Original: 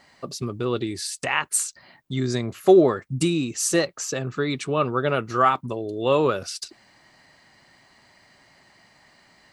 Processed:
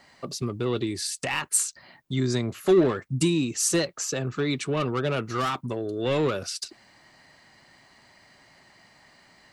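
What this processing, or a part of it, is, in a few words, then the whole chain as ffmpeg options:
one-band saturation: -filter_complex "[0:a]acrossover=split=350|2600[link_01][link_02][link_03];[link_02]asoftclip=type=tanh:threshold=-26.5dB[link_04];[link_01][link_04][link_03]amix=inputs=3:normalize=0"

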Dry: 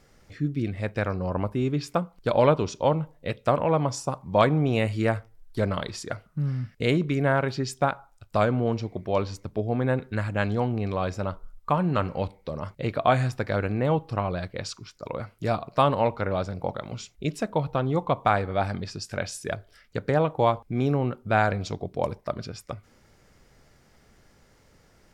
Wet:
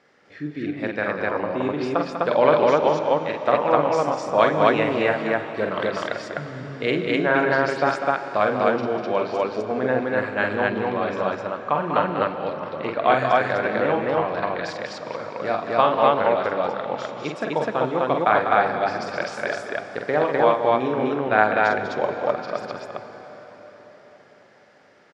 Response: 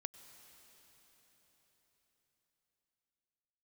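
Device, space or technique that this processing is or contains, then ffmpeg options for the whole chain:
station announcement: -filter_complex "[0:a]highpass=300,lowpass=3700,equalizer=frequency=1700:width_type=o:width=0.44:gain=4,aecho=1:1:46.65|195.3|253.6:0.562|0.398|1[link_01];[1:a]atrim=start_sample=2205[link_02];[link_01][link_02]afir=irnorm=-1:irlink=0,volume=6dB"

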